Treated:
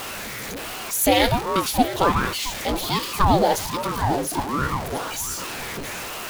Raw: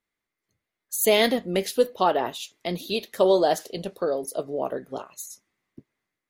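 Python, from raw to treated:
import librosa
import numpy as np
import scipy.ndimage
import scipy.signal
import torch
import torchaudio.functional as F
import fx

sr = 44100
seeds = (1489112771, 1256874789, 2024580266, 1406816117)

y = x + 0.5 * 10.0 ** (-26.0 / 20.0) * np.sign(x)
y = y + 10.0 ** (-14.0 / 20.0) * np.pad(y, (int(673 * sr / 1000.0), 0))[:len(y)]
y = fx.ring_lfo(y, sr, carrier_hz=440.0, swing_pct=75, hz=1.3)
y = y * librosa.db_to_amplitude(3.5)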